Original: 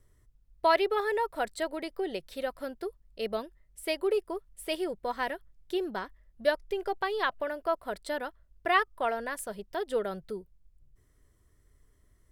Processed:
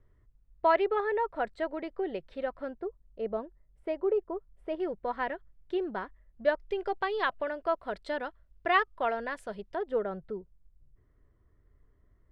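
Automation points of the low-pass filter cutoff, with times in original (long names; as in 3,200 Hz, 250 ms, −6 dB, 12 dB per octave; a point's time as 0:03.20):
2,000 Hz
from 0:02.79 1,100 Hz
from 0:04.80 2,200 Hz
from 0:06.60 3,700 Hz
from 0:09.75 1,600 Hz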